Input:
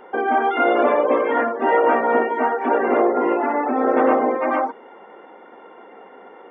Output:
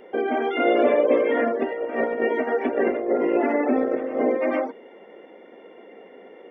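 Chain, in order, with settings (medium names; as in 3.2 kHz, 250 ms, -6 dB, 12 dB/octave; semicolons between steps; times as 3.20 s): dynamic bell 1.4 kHz, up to +3 dB, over -33 dBFS, Q 3.9; 1.43–4.22 s: compressor with a negative ratio -20 dBFS, ratio -0.5; high-order bell 1.1 kHz -12 dB 1.2 oct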